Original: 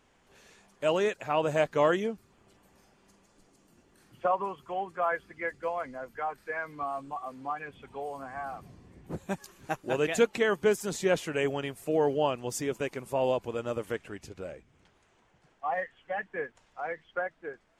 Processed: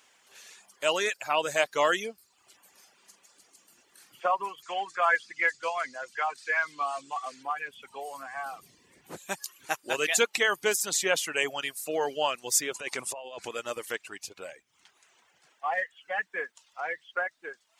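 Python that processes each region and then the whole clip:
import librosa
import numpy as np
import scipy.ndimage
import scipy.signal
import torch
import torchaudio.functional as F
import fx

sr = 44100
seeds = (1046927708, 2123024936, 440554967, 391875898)

y = fx.chain(x, sr, fx.lowpass(hz=7700.0, slope=24),
    fx.high_shelf(hz=2000.0, db=9.0), at=(4.62, 7.43))
y = fx.chain(y, sr, fx.lowpass(hz=10000.0, slope=24),
    fx.over_compress(threshold_db=-36.0, ratio=-1.0), at=(12.74, 13.5))
y = fx.highpass(y, sr, hz=1200.0, slope=6)
y = fx.dereverb_blind(y, sr, rt60_s=0.63)
y = fx.high_shelf(y, sr, hz=2800.0, db=8.0)
y = y * 10.0 ** (5.5 / 20.0)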